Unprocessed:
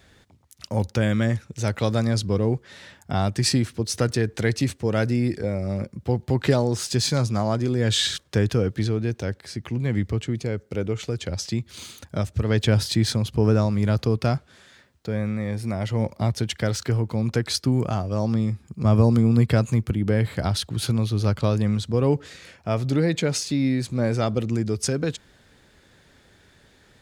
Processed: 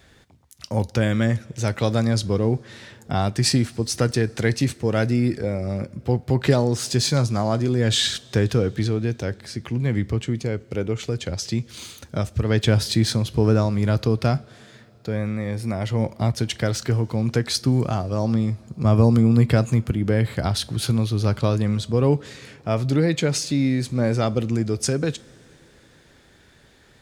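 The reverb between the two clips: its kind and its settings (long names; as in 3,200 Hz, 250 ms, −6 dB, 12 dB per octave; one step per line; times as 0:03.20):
coupled-rooms reverb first 0.23 s, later 3.9 s, from −22 dB, DRR 16 dB
level +1.5 dB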